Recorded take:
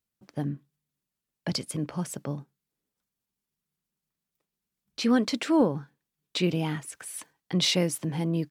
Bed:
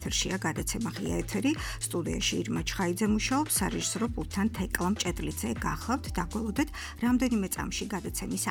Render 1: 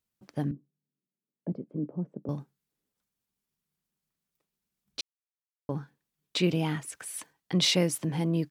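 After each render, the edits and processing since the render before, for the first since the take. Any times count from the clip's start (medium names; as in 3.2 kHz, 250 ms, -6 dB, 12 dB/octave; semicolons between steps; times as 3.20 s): 0.51–2.29 s: Butterworth band-pass 280 Hz, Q 0.87; 5.01–5.69 s: mute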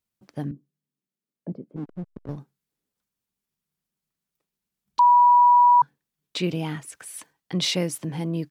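1.76–2.37 s: hysteresis with a dead band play -33 dBFS; 4.99–5.82 s: bleep 973 Hz -11.5 dBFS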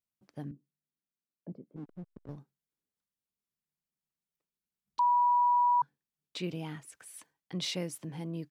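trim -10.5 dB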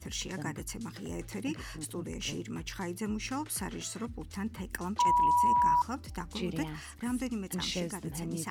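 add bed -8 dB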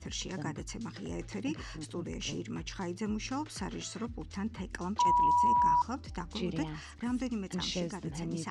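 low-pass 6.9 kHz 24 dB/octave; dynamic bell 2 kHz, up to -5 dB, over -48 dBFS, Q 1.7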